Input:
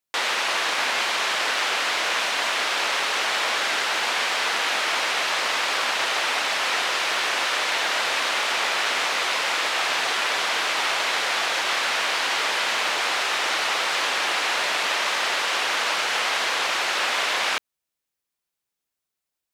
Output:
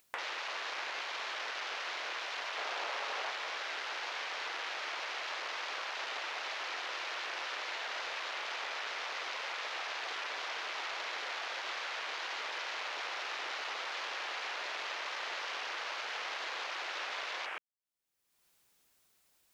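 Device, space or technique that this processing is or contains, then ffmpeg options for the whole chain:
upward and downward compression: -filter_complex "[0:a]acompressor=mode=upward:threshold=-31dB:ratio=2.5,acompressor=threshold=-38dB:ratio=5,afwtdn=0.00794,asettb=1/sr,asplit=3[link_01][link_02][link_03];[link_01]atrim=end=2.564[link_04];[link_02]atrim=start=2.56:end=3.31,asetpts=PTS-STARTPTS,afade=type=in:duration=0.004:curve=qsin,afade=type=out:start_time=0.746:duration=0.004:curve=qsin,equalizer=frequency=660:width_type=o:width=1.6:gain=5.5[link_05];[link_03]atrim=start=3.306[link_06];[link_04][link_05]acrossfade=duration=0.004:curve1=hsin:curve2=qsin[link_07];[link_07][link_06]acrossfade=duration=0.004:curve1=qsin:curve2=hsin"

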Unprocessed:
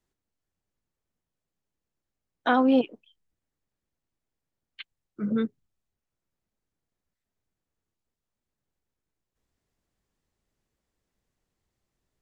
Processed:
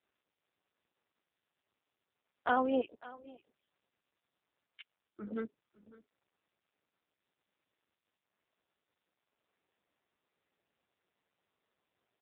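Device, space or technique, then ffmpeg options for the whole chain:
satellite phone: -af "highpass=350,lowpass=3300,aecho=1:1:554:0.112,volume=-5dB" -ar 8000 -c:a libopencore_amrnb -b:a 5900

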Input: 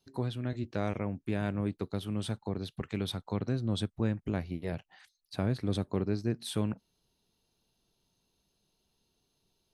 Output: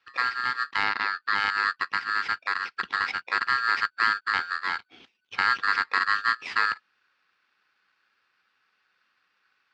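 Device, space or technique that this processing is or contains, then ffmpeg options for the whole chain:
ring modulator pedal into a guitar cabinet: -filter_complex "[0:a]aeval=exprs='val(0)*sgn(sin(2*PI*1500*n/s))':channel_layout=same,highpass=110,equalizer=frequency=150:width_type=q:width=4:gain=-8,equalizer=frequency=610:width_type=q:width=4:gain=-9,equalizer=frequency=2600:width_type=q:width=4:gain=3,lowpass=frequency=4100:width=0.5412,lowpass=frequency=4100:width=1.3066,asettb=1/sr,asplit=3[link_01][link_02][link_03];[link_01]atrim=end=0.844[link_04];[link_02]atrim=start=0.84:end=1.35,asetpts=PTS-STARTPTS,afade=type=in:duration=0.004:curve=qsin,afade=type=out:start_time=0.506:duration=0.004:curve=qsin,lowpass=frequency=6200:width=0.5412,lowpass=frequency=6200:width=1.3066[link_05];[link_03]atrim=start=1.346[link_06];[link_04][link_05]acrossfade=duration=0.004:curve1=hsin:curve2=qsin[link_07];[link_07][link_06]acrossfade=duration=0.004:curve1=qsin:curve2=hsin,volume=7dB"

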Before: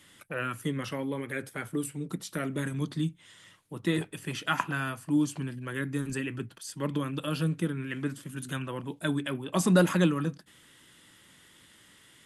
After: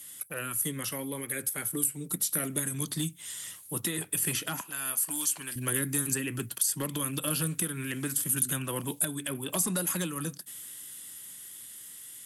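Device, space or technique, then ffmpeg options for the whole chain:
FM broadcast chain: -filter_complex "[0:a]highpass=frequency=52:width=0.5412,highpass=frequency=52:width=1.3066,dynaudnorm=framelen=270:gausssize=21:maxgain=12dB,acrossover=split=790|2500[link_01][link_02][link_03];[link_01]acompressor=threshold=-25dB:ratio=4[link_04];[link_02]acompressor=threshold=-35dB:ratio=4[link_05];[link_03]acompressor=threshold=-41dB:ratio=4[link_06];[link_04][link_05][link_06]amix=inputs=3:normalize=0,aemphasis=mode=production:type=50fm,alimiter=limit=-18dB:level=0:latency=1:release=483,asoftclip=type=hard:threshold=-21.5dB,lowpass=frequency=15000:width=0.5412,lowpass=frequency=15000:width=1.3066,aemphasis=mode=production:type=50fm,asettb=1/sr,asplit=3[link_07][link_08][link_09];[link_07]atrim=end=4.614[link_10];[link_08]atrim=start=4.61:end=5.56,asetpts=PTS-STARTPTS,afade=type=in:duration=0.004:curve=qsin,afade=type=out:start_time=0.946:duration=0.004:curve=qsin,highpass=frequency=1000:poles=1[link_11];[link_09]atrim=start=5.556[link_12];[link_10][link_11]acrossfade=duration=0.004:curve1=hsin:curve2=qsin[link_13];[link_13][link_12]acrossfade=duration=0.004:curve1=qsin:curve2=hsin,volume=-3.5dB"

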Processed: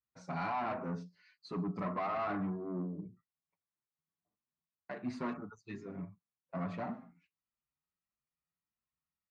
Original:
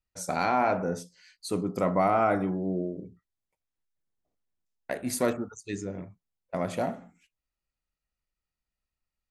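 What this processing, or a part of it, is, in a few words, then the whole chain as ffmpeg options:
barber-pole flanger into a guitar amplifier: -filter_complex "[0:a]asplit=2[link_01][link_02];[link_02]adelay=6.3,afreqshift=1.6[link_03];[link_01][link_03]amix=inputs=2:normalize=1,asoftclip=type=tanh:threshold=-29dB,highpass=85,equalizer=frequency=160:width_type=q:width=4:gain=8,equalizer=frequency=240:width_type=q:width=4:gain=3,equalizer=frequency=510:width_type=q:width=4:gain=-7,equalizer=frequency=1100:width_type=q:width=4:gain=8,equalizer=frequency=3300:width_type=q:width=4:gain=-9,lowpass=frequency=4100:width=0.5412,lowpass=frequency=4100:width=1.3066,volume=-4dB"

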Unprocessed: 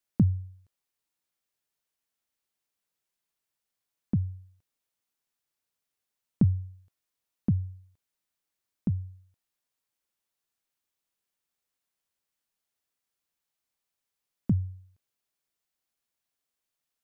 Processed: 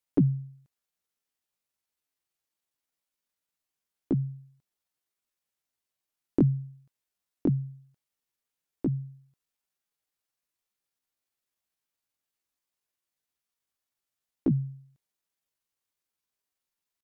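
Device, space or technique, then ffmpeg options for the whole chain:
chipmunk voice: -af "asetrate=64194,aresample=44100,atempo=0.686977"

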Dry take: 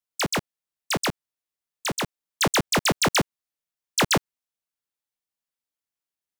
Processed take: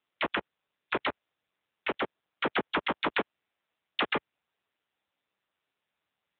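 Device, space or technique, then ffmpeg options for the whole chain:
voicemail: -filter_complex "[0:a]asettb=1/sr,asplit=3[link_01][link_02][link_03];[link_01]atrim=end=1.924[link_04];[link_02]atrim=start=1.92:end=3.11,asetpts=PTS-STARTPTS,afade=type=in:duration=0.004:curve=qsin,afade=type=out:start_time=1.186:duration=0.004:curve=qsin,equalizer=frequency=2500:width_type=o:width=1.6:gain=-4[link_05];[link_03]atrim=start=3.106[link_06];[link_04][link_05]acrossfade=duration=0.004:curve1=hsin:curve2=qsin[link_07];[link_07][link_06]acrossfade=duration=0.004:curve1=qsin:curve2=hsin,highpass=360,lowpass=3100,acompressor=threshold=-24dB:ratio=10,volume=5.5dB" -ar 8000 -c:a libopencore_amrnb -b:a 6700

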